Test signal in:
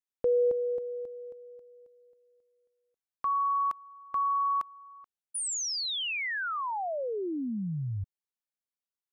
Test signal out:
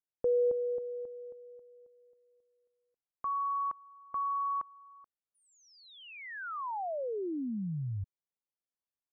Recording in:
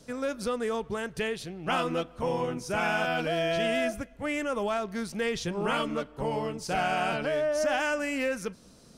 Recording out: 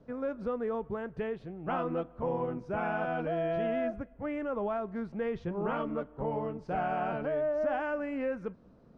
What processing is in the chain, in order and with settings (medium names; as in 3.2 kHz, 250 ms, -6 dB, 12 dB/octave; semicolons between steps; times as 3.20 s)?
low-pass 1.2 kHz 12 dB/octave; trim -2.5 dB